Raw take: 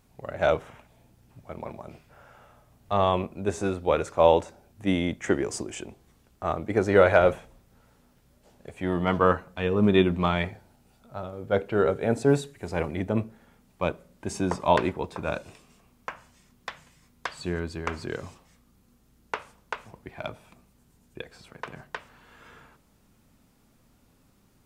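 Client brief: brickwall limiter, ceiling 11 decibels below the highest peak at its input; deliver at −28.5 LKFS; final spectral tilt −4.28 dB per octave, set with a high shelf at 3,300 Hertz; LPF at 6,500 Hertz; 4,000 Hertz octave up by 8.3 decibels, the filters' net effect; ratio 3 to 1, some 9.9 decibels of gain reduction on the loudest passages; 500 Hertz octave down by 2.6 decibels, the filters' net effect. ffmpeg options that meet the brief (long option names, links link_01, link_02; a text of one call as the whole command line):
ffmpeg -i in.wav -af "lowpass=6500,equalizer=frequency=500:width_type=o:gain=-3.5,highshelf=frequency=3300:gain=8,equalizer=frequency=4000:width_type=o:gain=5.5,acompressor=threshold=-28dB:ratio=3,volume=10.5dB,alimiter=limit=-14.5dB:level=0:latency=1" out.wav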